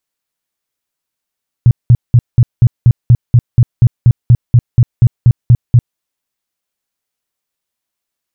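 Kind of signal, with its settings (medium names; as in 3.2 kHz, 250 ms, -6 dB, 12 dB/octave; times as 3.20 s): tone bursts 120 Hz, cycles 6, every 0.24 s, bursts 18, -1.5 dBFS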